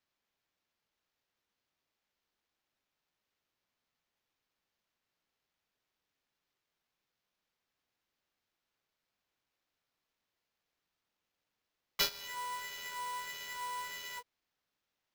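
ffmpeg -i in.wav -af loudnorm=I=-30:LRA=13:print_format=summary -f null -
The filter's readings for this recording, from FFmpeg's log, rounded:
Input Integrated:    -39.7 LUFS
Input True Peak:     -13.1 dBTP
Input LRA:             2.9 LU
Input Threshold:     -49.9 LUFS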